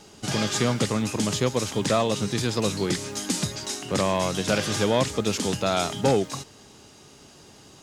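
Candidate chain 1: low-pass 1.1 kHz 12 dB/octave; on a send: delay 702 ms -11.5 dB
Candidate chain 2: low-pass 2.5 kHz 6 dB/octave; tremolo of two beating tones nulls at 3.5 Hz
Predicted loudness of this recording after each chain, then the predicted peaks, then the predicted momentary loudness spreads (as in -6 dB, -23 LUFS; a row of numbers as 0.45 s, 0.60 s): -27.0 LUFS, -29.5 LUFS; -10.5 dBFS, -10.5 dBFS; 11 LU, 7 LU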